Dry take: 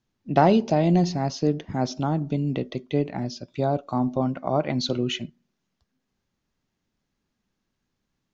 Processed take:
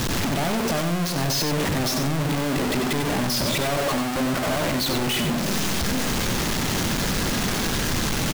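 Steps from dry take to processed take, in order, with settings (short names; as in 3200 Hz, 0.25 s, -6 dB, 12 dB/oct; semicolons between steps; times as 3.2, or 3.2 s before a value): infinite clipping; echo 94 ms -6.5 dB; gain +2 dB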